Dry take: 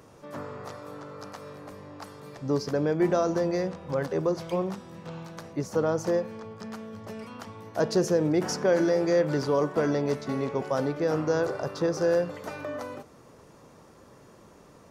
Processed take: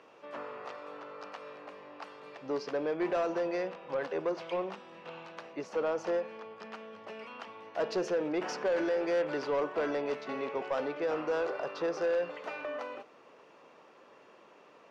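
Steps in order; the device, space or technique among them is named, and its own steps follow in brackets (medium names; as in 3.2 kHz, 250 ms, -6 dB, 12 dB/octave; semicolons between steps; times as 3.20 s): intercom (band-pass 420–3500 Hz; peaking EQ 2.7 kHz +8 dB 0.47 oct; saturation -22.5 dBFS, distortion -15 dB); trim -1.5 dB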